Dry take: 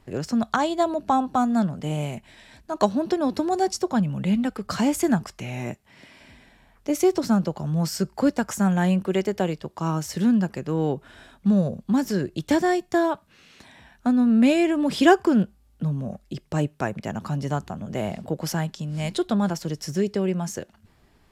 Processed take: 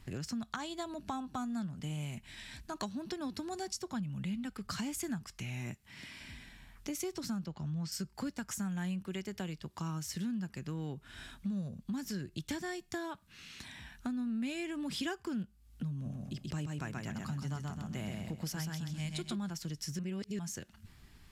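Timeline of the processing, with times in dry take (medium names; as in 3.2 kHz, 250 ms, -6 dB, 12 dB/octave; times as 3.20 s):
7.46–7.92 s: low-pass 5.2 kHz
15.93–19.39 s: feedback delay 130 ms, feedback 35%, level -3.5 dB
19.99–20.39 s: reverse
whole clip: peaking EQ 560 Hz -14.5 dB 1.9 oct; compression 3:1, threshold -44 dBFS; trim +3.5 dB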